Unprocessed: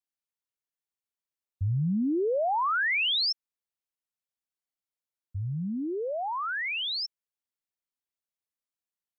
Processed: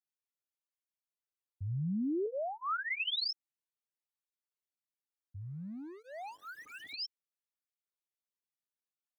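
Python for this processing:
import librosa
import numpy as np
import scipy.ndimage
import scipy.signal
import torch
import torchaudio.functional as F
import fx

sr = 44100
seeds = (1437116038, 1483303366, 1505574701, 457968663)

y = fx.median_filter(x, sr, points=41, at=(5.41, 6.94))
y = fx.spec_paint(y, sr, seeds[0], shape='rise', start_s=6.66, length_s=0.4, low_hz=1200.0, high_hz=3200.0, level_db=-43.0)
y = fx.notch_comb(y, sr, f0_hz=490.0, at=(2.26, 3.08))
y = fx.flanger_cancel(y, sr, hz=0.58, depth_ms=2.0)
y = F.gain(torch.from_numpy(y), -5.0).numpy()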